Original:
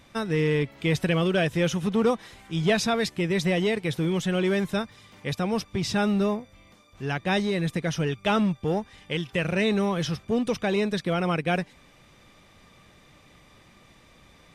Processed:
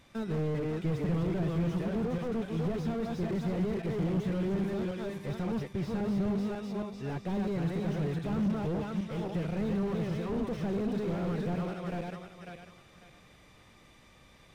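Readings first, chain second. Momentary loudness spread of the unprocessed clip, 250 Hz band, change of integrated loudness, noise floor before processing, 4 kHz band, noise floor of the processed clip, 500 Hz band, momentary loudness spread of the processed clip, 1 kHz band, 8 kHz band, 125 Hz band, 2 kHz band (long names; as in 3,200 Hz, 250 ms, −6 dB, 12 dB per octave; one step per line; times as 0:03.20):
7 LU, −5.0 dB, −7.0 dB, −56 dBFS, −17.0 dB, −58 dBFS, −8.0 dB, 6 LU, −10.0 dB, below −15 dB, −4.0 dB, −15.5 dB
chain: feedback delay that plays each chunk backwards 273 ms, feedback 47%, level −3 dB
slew-rate limiting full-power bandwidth 21 Hz
level −5.5 dB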